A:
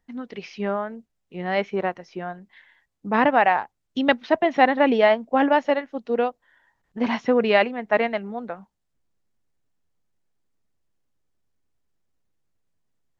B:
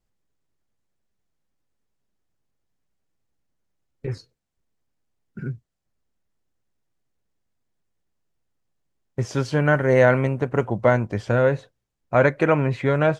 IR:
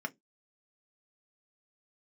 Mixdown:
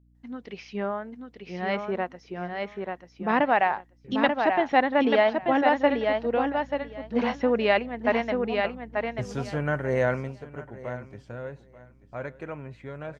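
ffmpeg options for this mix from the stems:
-filter_complex "[0:a]adelay=150,volume=-4dB,asplit=2[link_01][link_02];[link_02]volume=-4.5dB[link_03];[1:a]aeval=exprs='val(0)+0.0126*(sin(2*PI*60*n/s)+sin(2*PI*2*60*n/s)/2+sin(2*PI*3*60*n/s)/3+sin(2*PI*4*60*n/s)/4+sin(2*PI*5*60*n/s)/5)':channel_layout=same,volume=-8.5dB,afade=type=in:start_time=5.69:duration=0.28:silence=0.237137,afade=type=out:start_time=10.11:duration=0.25:silence=0.316228,asplit=2[link_04][link_05];[link_05]volume=-17dB[link_06];[link_03][link_06]amix=inputs=2:normalize=0,aecho=0:1:887|1774|2661:1|0.16|0.0256[link_07];[link_01][link_04][link_07]amix=inputs=3:normalize=0"

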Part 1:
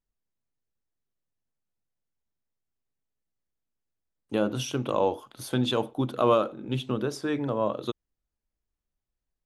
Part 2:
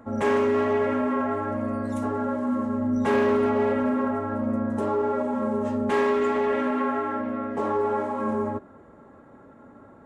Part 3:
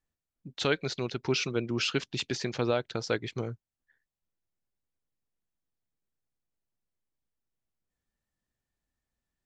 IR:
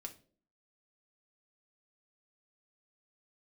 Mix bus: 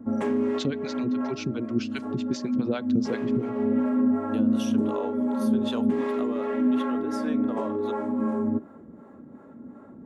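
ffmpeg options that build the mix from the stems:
-filter_complex "[0:a]highpass=510,volume=-0.5dB[link_01];[1:a]volume=-3dB,asplit=2[link_02][link_03];[link_03]volume=-11.5dB[link_04];[2:a]acrossover=split=620[link_05][link_06];[link_05]aeval=exprs='val(0)*(1-1/2+1/2*cos(2*PI*7.4*n/s))':channel_layout=same[link_07];[link_06]aeval=exprs='val(0)*(1-1/2-1/2*cos(2*PI*7.4*n/s))':channel_layout=same[link_08];[link_07][link_08]amix=inputs=2:normalize=0,volume=0dB,asplit=3[link_09][link_10][link_11];[link_10]volume=-17dB[link_12];[link_11]apad=whole_len=443591[link_13];[link_02][link_13]sidechaincompress=threshold=-50dB:ratio=6:attack=23:release=189[link_14];[link_01][link_14]amix=inputs=2:normalize=0,acompressor=threshold=-29dB:ratio=6,volume=0dB[link_15];[3:a]atrim=start_sample=2205[link_16];[link_04][link_12]amix=inputs=2:normalize=0[link_17];[link_17][link_16]afir=irnorm=-1:irlink=0[link_18];[link_09][link_15][link_18]amix=inputs=3:normalize=0,equalizer=frequency=230:width_type=o:width=1.6:gain=13,acrossover=split=410[link_19][link_20];[link_19]aeval=exprs='val(0)*(1-0.7/2+0.7/2*cos(2*PI*2.7*n/s))':channel_layout=same[link_21];[link_20]aeval=exprs='val(0)*(1-0.7/2-0.7/2*cos(2*PI*2.7*n/s))':channel_layout=same[link_22];[link_21][link_22]amix=inputs=2:normalize=0"

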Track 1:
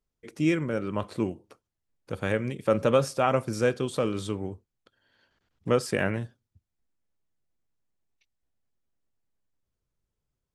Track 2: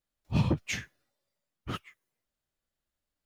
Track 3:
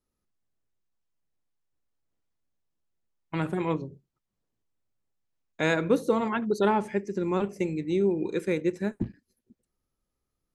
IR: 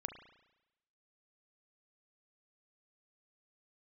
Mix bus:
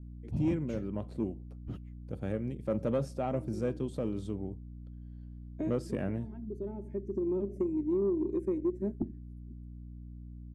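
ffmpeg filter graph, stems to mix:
-filter_complex "[0:a]lowshelf=frequency=330:gain=-8.5,aeval=exprs='val(0)+0.00447*(sin(2*PI*60*n/s)+sin(2*PI*2*60*n/s)/2+sin(2*PI*3*60*n/s)/3+sin(2*PI*4*60*n/s)/4+sin(2*PI*5*60*n/s)/5)':channel_layout=same,volume=3dB,asplit=2[link_01][link_02];[1:a]acompressor=threshold=-27dB:ratio=6,volume=-2.5dB[link_03];[2:a]aecho=1:1:3.2:0.88,acompressor=threshold=-29dB:ratio=3,equalizer=frequency=160:width_type=o:width=0.67:gain=7,equalizer=frequency=400:width_type=o:width=0.67:gain=10,equalizer=frequency=4000:width_type=o:width=0.67:gain=-9,equalizer=frequency=10000:width_type=o:width=0.67:gain=6,volume=-3dB[link_04];[link_02]apad=whole_len=465201[link_05];[link_04][link_05]sidechaincompress=threshold=-35dB:ratio=5:attack=37:release=1200[link_06];[link_01][link_03][link_06]amix=inputs=3:normalize=0,firequalizer=gain_entry='entry(250,0);entry(470,-9);entry(710,-9);entry(1100,-20)':delay=0.05:min_phase=1,asoftclip=type=tanh:threshold=-20.5dB"

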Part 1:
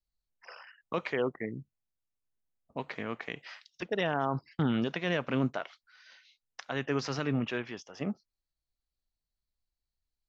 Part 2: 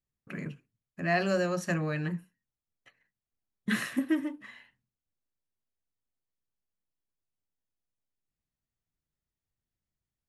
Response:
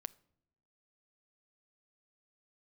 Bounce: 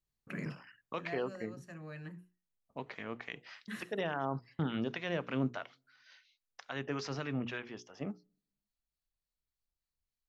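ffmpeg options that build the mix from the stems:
-filter_complex "[0:a]acrossover=split=940[link_01][link_02];[link_01]aeval=exprs='val(0)*(1-0.5/2+0.5/2*cos(2*PI*3.5*n/s))':channel_layout=same[link_03];[link_02]aeval=exprs='val(0)*(1-0.5/2-0.5/2*cos(2*PI*3.5*n/s))':channel_layout=same[link_04];[link_03][link_04]amix=inputs=2:normalize=0,volume=-4.5dB,asplit=3[link_05][link_06][link_07];[link_06]volume=-10dB[link_08];[1:a]volume=-1.5dB,afade=type=out:start_time=1:duration=0.69:silence=0.266073[link_09];[link_07]apad=whole_len=453359[link_10];[link_09][link_10]sidechaincompress=threshold=-51dB:ratio=8:attack=39:release=456[link_11];[2:a]atrim=start_sample=2205[link_12];[link_08][link_12]afir=irnorm=-1:irlink=0[link_13];[link_05][link_11][link_13]amix=inputs=3:normalize=0,bandreject=frequency=60:width_type=h:width=6,bandreject=frequency=120:width_type=h:width=6,bandreject=frequency=180:width_type=h:width=6,bandreject=frequency=240:width_type=h:width=6,bandreject=frequency=300:width_type=h:width=6,bandreject=frequency=360:width_type=h:width=6,bandreject=frequency=420:width_type=h:width=6,bandreject=frequency=480:width_type=h:width=6"

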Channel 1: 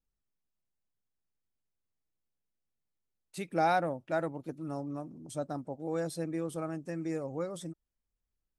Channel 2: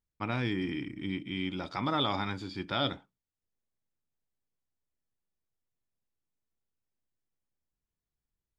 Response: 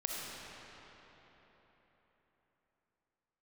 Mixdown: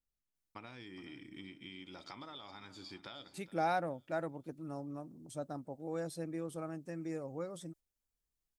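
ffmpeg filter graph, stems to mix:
-filter_complex "[0:a]volume=-5.5dB,asplit=2[link_01][link_02];[1:a]bass=frequency=250:gain=-6,treble=frequency=4000:gain=9,acompressor=threshold=-39dB:ratio=16,adelay=350,volume=0.5dB,asplit=2[link_03][link_04];[link_04]volume=-23dB[link_05];[link_02]apad=whole_len=393968[link_06];[link_03][link_06]sidechaingate=range=-7dB:threshold=-56dB:ratio=16:detection=peak[link_07];[link_05]aecho=0:1:418|836|1254|1672:1|0.26|0.0676|0.0176[link_08];[link_01][link_07][link_08]amix=inputs=3:normalize=0"

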